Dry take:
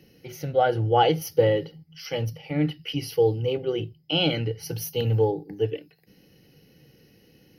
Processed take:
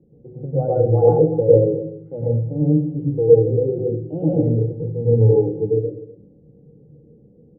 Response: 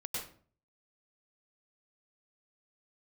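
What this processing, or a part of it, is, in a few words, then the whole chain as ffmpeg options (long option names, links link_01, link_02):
next room: -filter_complex "[0:a]lowpass=frequency=560:width=0.5412,lowpass=frequency=560:width=1.3066[link_01];[1:a]atrim=start_sample=2205[link_02];[link_01][link_02]afir=irnorm=-1:irlink=0,asettb=1/sr,asplit=3[link_03][link_04][link_05];[link_03]atrim=end=3.194[link_06];[link_04]atrim=start=3.19:end=4.83,asetpts=PTS-STARTPTS,afade=type=in:duration=0.004:curve=qsin,afade=type=out:start_time=1.636:duration=0.004:curve=qsin,equalizer=frequency=1100:width_type=o:width=0.29:gain=-10[link_07];[link_05]atrim=start=4.826[link_08];[link_06][link_07]acrossfade=duration=0.004:curve1=hsin:curve2=qsin[link_09];[link_09][link_08]acrossfade=duration=0.004:curve1=qsin:curve2=hsin,aecho=1:1:250:0.15,volume=5dB"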